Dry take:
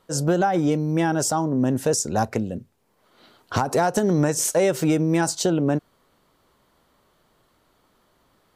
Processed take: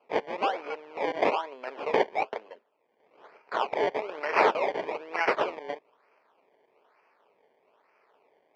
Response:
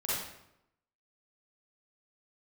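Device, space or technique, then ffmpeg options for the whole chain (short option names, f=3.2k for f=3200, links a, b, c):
circuit-bent sampling toy: -af "highpass=1.4k,acrusher=samples=23:mix=1:aa=0.000001:lfo=1:lforange=23:lforate=1.1,highpass=400,equalizer=f=430:t=q:w=4:g=9,equalizer=f=620:t=q:w=4:g=5,equalizer=f=900:t=q:w=4:g=5,equalizer=f=2.4k:t=q:w=4:g=6,equalizer=f=3.8k:t=q:w=4:g=-8,lowpass=f=4.1k:w=0.5412,lowpass=f=4.1k:w=1.3066,volume=1.5dB"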